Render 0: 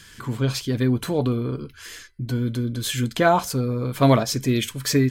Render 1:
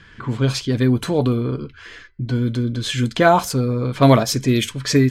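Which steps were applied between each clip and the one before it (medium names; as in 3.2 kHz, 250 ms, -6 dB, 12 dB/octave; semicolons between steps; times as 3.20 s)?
level-controlled noise filter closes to 2.1 kHz, open at -17 dBFS; trim +4 dB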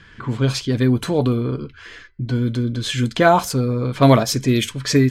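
no audible change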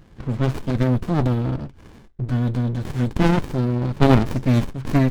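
sliding maximum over 65 samples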